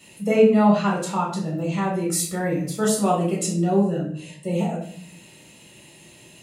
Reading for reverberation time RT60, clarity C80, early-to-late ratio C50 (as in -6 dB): 0.55 s, 9.0 dB, 5.5 dB